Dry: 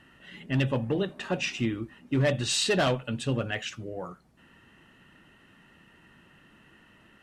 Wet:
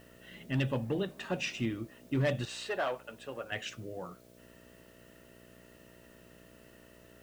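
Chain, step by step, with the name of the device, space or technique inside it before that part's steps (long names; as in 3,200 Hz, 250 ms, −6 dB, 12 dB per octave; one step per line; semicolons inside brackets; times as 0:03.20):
0:02.45–0:03.52: three-way crossover with the lows and the highs turned down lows −23 dB, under 420 Hz, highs −13 dB, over 2,200 Hz
video cassette with head-switching buzz (hum with harmonics 60 Hz, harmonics 11, −54 dBFS 0 dB per octave; white noise bed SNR 29 dB)
level −5 dB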